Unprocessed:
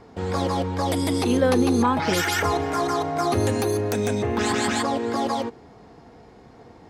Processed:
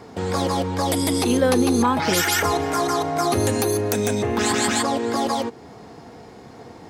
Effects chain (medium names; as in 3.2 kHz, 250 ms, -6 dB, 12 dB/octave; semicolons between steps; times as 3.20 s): high-pass 80 Hz; treble shelf 6.1 kHz +9 dB; in parallel at 0 dB: compression, threshold -35 dBFS, peak gain reduction 18 dB